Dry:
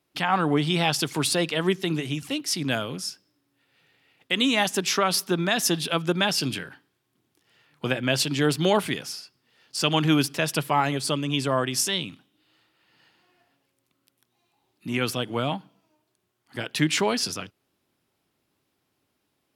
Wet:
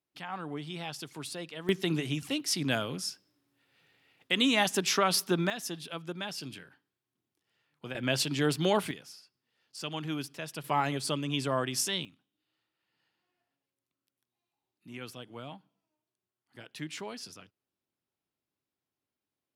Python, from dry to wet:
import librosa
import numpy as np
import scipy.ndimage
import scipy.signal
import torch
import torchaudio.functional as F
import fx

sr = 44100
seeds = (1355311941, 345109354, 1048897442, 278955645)

y = fx.gain(x, sr, db=fx.steps((0.0, -16.0), (1.69, -3.5), (5.5, -14.5), (7.95, -5.5), (8.91, -14.5), (10.64, -6.0), (12.05, -17.0)))